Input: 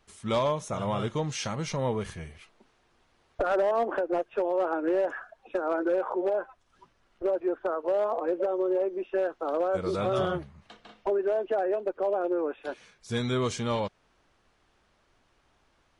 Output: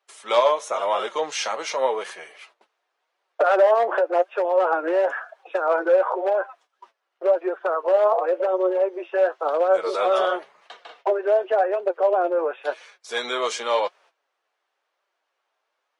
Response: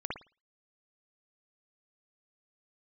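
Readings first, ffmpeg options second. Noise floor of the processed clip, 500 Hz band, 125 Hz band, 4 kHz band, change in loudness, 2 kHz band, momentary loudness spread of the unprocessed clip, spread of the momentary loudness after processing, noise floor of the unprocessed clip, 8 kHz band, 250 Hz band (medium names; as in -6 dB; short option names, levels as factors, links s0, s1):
-78 dBFS, +7.0 dB, under -30 dB, +7.5 dB, +7.0 dB, +9.0 dB, 8 LU, 10 LU, -68 dBFS, no reading, -3.0 dB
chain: -af "agate=range=0.158:threshold=0.00126:ratio=16:detection=peak,highpass=f=480:w=0.5412,highpass=f=480:w=1.3066,highshelf=f=5700:g=-6.5,acontrast=23,flanger=delay=4.9:depth=4.7:regen=52:speed=0.93:shape=triangular,volume=2.66"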